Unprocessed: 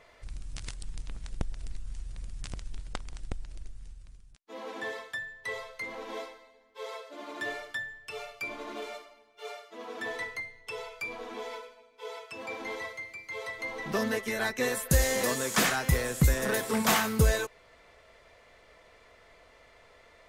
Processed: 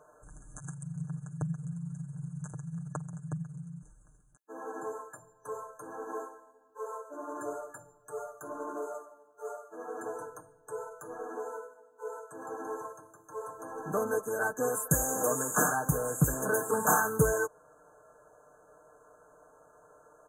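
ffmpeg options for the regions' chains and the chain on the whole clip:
ffmpeg -i in.wav -filter_complex "[0:a]asettb=1/sr,asplit=3[link_01][link_02][link_03];[link_01]atrim=end=0.594[link_04];[link_02]atrim=start=0.59:end=3.83,asetpts=PTS-STARTPTS,afade=type=in:duration=0.004:curve=qsin,afade=type=out:start_time=3.236:duration=0.004:curve=qsin,tremolo=f=22:d=0.71,afreqshift=-180[link_05];[link_03]atrim=start=3.826[link_06];[link_04][link_05]acrossfade=duration=0.004:curve1=hsin:curve2=qsin[link_07];[link_07][link_06]acrossfade=duration=0.004:curve1=qsin:curve2=hsin,highpass=frequency=180:poles=1,afftfilt=real='re*(1-between(b*sr/4096,1700,6100))':imag='im*(1-between(b*sr/4096,1700,6100))':win_size=4096:overlap=0.75,aecho=1:1:6.6:0.7" out.wav

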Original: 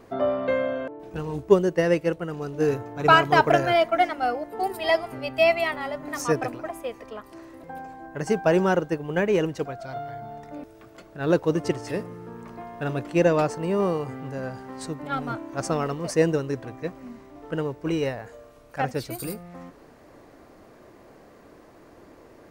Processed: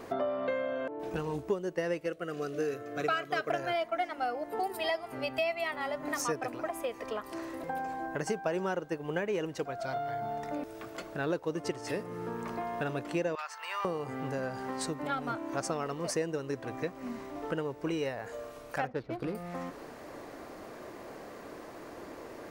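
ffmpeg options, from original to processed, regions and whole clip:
ffmpeg -i in.wav -filter_complex "[0:a]asettb=1/sr,asplit=3[link_01][link_02][link_03];[link_01]atrim=end=2.064[link_04];[link_02]atrim=start=2.06:end=3.5,asetpts=PTS-STARTPTS,afade=type=in:duration=0.004:curve=qsin,afade=type=out:start_time=1.436:duration=0.004:curve=qsin,asuperstop=centerf=910:order=4:qfactor=2.7,lowshelf=frequency=170:gain=-10[link_05];[link_03]atrim=start=3.496[link_06];[link_04][link_05]acrossfade=duration=0.004:curve1=hsin:curve2=qsin[link_07];[link_07][link_06]acrossfade=duration=0.004:curve1=qsin:curve2=hsin,asettb=1/sr,asplit=3[link_08][link_09][link_10];[link_08]atrim=end=13.354[link_11];[link_09]atrim=start=13.35:end=13.85,asetpts=PTS-STARTPTS,afade=type=in:duration=0.004:curve=qsin,afade=type=out:start_time=0.496:duration=0.004:curve=qsin,highpass=frequency=1100:width=0.5412,highpass=frequency=1100:width=1.3066,equalizer=frequency=9000:width_type=o:width=1.2:gain=-9[link_12];[link_10]atrim=start=13.846[link_13];[link_11][link_12]acrossfade=duration=0.004:curve1=hsin:curve2=qsin[link_14];[link_14][link_13]acrossfade=duration=0.004:curve1=qsin:curve2=hsin,asettb=1/sr,asplit=3[link_15][link_16][link_17];[link_15]atrim=end=18.874[link_18];[link_16]atrim=start=18.87:end=19.35,asetpts=PTS-STARTPTS,afade=type=in:duration=0.004:curve=qsin,afade=type=out:start_time=0.476:duration=0.004:curve=qsin,adynamicsmooth=sensitivity=4.5:basefreq=850,equalizer=frequency=8200:width_type=o:width=0.89:gain=-6.5[link_19];[link_17]atrim=start=19.346[link_20];[link_18][link_19]acrossfade=duration=0.004:curve1=hsin:curve2=qsin[link_21];[link_21][link_20]acrossfade=duration=0.004:curve1=qsin:curve2=hsin,lowshelf=frequency=200:gain=-9,acompressor=threshold=-39dB:ratio=4,volume=6.5dB" out.wav

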